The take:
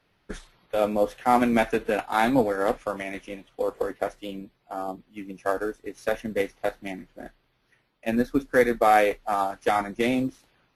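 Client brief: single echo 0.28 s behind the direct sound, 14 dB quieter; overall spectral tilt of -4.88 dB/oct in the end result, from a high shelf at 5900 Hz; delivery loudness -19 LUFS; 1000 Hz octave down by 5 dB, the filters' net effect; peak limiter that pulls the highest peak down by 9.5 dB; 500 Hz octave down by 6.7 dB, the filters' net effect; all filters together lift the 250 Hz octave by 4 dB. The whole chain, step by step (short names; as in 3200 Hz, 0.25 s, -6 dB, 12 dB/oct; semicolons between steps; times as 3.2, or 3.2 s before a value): bell 250 Hz +6.5 dB; bell 500 Hz -8.5 dB; bell 1000 Hz -3.5 dB; high shelf 5900 Hz -5 dB; limiter -18.5 dBFS; echo 0.28 s -14 dB; gain +12 dB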